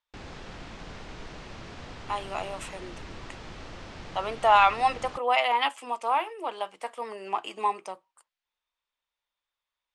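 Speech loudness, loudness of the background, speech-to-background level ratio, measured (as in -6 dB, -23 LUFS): -27.0 LUFS, -43.5 LUFS, 16.5 dB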